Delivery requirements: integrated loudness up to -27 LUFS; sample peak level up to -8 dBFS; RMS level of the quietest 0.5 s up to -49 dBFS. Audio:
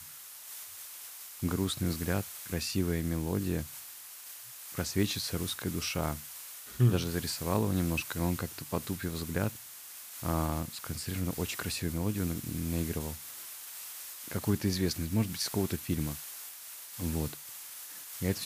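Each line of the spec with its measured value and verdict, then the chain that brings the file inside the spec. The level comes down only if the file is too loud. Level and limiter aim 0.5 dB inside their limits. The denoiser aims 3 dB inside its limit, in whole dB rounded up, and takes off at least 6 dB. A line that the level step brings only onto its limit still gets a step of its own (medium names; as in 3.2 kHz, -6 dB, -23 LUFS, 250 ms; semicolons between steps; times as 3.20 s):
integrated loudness -34.0 LUFS: pass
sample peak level -14.0 dBFS: pass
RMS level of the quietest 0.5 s -48 dBFS: fail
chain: noise reduction 6 dB, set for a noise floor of -48 dBFS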